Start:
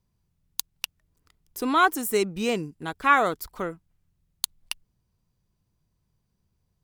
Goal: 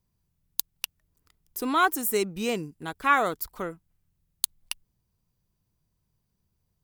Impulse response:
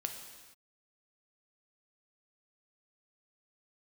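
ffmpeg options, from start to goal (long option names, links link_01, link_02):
-af "highshelf=frequency=11000:gain=9.5,volume=-2.5dB"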